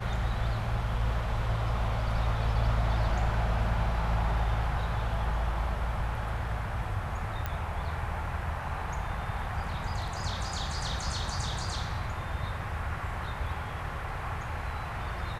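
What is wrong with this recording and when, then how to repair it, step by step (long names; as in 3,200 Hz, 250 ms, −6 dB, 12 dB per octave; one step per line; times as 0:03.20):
0:07.46: click −19 dBFS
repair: click removal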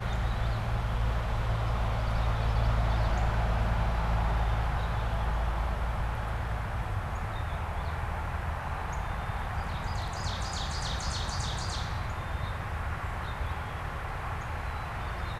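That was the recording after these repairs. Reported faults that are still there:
none of them is left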